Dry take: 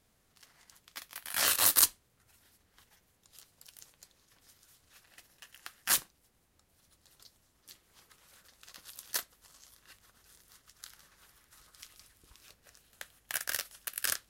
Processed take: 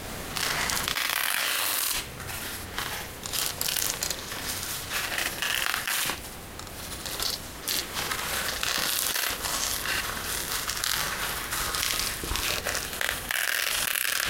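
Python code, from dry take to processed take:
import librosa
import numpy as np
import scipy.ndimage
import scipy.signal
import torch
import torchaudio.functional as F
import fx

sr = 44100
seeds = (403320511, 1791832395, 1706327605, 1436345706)

p1 = x + fx.room_early_taps(x, sr, ms=(32, 77), db=(-6.5, -4.5), dry=0)
p2 = fx.dynamic_eq(p1, sr, hz=2600.0, q=1.4, threshold_db=-50.0, ratio=4.0, max_db=6)
p3 = fx.rider(p2, sr, range_db=10, speed_s=0.5)
p4 = fx.bass_treble(p3, sr, bass_db=-4, treble_db=-5)
p5 = fx.env_flatten(p4, sr, amount_pct=100)
y = p5 * librosa.db_to_amplitude(-2.0)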